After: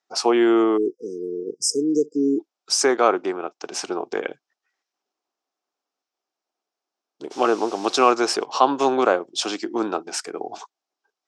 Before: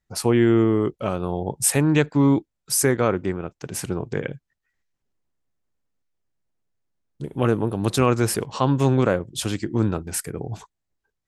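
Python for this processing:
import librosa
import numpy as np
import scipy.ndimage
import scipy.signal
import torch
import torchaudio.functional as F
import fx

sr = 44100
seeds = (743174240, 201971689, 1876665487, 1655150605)

y = fx.spec_erase(x, sr, start_s=0.77, length_s=1.63, low_hz=500.0, high_hz=4800.0)
y = fx.dmg_noise_colour(y, sr, seeds[0], colour='white', level_db=-44.0, at=(7.3, 8.11), fade=0.02)
y = fx.cabinet(y, sr, low_hz=330.0, low_slope=24, high_hz=6800.0, hz=(510.0, 750.0, 1200.0, 1900.0, 5400.0), db=(-4, 7, 4, -6, 6))
y = y * 10.0 ** (4.0 / 20.0)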